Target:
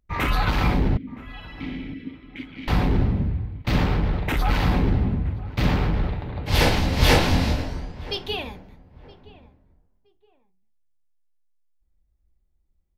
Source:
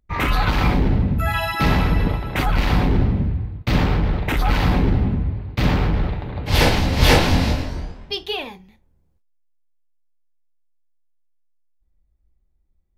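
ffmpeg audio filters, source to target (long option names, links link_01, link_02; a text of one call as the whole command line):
ffmpeg -i in.wav -filter_complex "[0:a]asettb=1/sr,asplit=3[link_01][link_02][link_03];[link_01]atrim=end=0.974[link_04];[link_02]atrim=start=0.97:end=2.68,asetpts=PTS-STARTPTS,afade=type=in:duration=0.004:curve=qsin,afade=type=out:start_time=1.706:duration=0.004:curve=qsin,asplit=3[link_05][link_06][link_07];[link_05]bandpass=frequency=270:width_type=q:width=8,volume=0dB[link_08];[link_06]bandpass=frequency=2290:width_type=q:width=8,volume=-6dB[link_09];[link_07]bandpass=frequency=3010:width_type=q:width=8,volume=-9dB[link_10];[link_08][link_09][link_10]amix=inputs=3:normalize=0[link_11];[link_03]atrim=start=2.676[link_12];[link_04][link_11]acrossfade=duration=0.004:curve1=hsin:curve2=qsin[link_13];[link_13][link_12]acrossfade=duration=0.004:curve1=qsin:curve2=hsin,asplit=2[link_14][link_15];[link_15]adelay=970,lowpass=frequency=1400:poles=1,volume=-18.5dB,asplit=2[link_16][link_17];[link_17]adelay=970,lowpass=frequency=1400:poles=1,volume=0.29[link_18];[link_14][link_16][link_18]amix=inputs=3:normalize=0,volume=-3dB" out.wav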